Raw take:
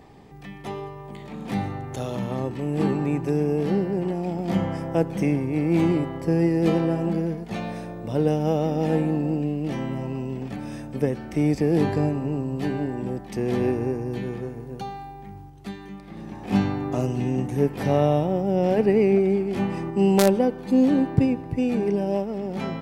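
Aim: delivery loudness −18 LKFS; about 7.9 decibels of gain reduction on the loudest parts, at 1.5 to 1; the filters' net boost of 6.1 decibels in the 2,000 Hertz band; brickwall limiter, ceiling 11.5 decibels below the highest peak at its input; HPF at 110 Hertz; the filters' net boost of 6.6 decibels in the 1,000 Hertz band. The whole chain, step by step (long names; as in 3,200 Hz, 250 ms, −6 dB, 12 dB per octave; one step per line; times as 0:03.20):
high-pass filter 110 Hz
parametric band 1,000 Hz +8.5 dB
parametric band 2,000 Hz +5 dB
downward compressor 1.5 to 1, threshold −33 dBFS
level +15.5 dB
brickwall limiter −8.5 dBFS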